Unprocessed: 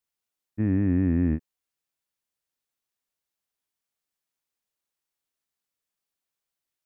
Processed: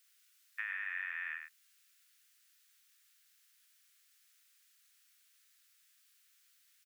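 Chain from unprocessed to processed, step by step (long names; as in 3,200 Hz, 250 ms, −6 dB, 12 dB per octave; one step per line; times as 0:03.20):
Butterworth high-pass 1,400 Hz 36 dB per octave
downward compressor 6 to 1, threshold −54 dBFS, peak gain reduction 8.5 dB
slap from a distant wall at 17 metres, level −6 dB
level +17 dB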